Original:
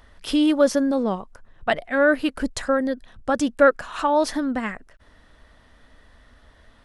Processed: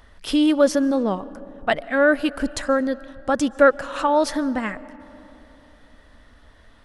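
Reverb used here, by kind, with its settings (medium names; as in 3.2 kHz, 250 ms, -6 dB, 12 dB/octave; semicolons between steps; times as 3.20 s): algorithmic reverb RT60 3.5 s, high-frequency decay 0.4×, pre-delay 100 ms, DRR 19 dB; trim +1 dB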